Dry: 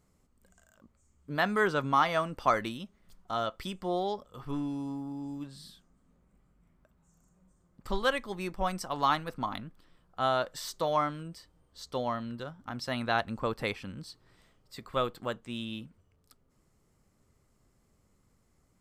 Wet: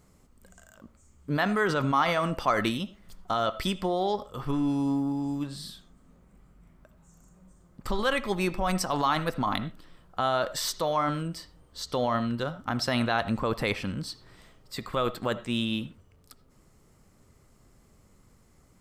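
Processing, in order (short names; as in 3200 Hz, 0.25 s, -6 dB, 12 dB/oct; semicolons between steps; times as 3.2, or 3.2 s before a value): in parallel at +1.5 dB: negative-ratio compressor -34 dBFS, ratio -0.5; on the sum: reverb RT60 0.20 s, pre-delay 40 ms, DRR 14.5 dB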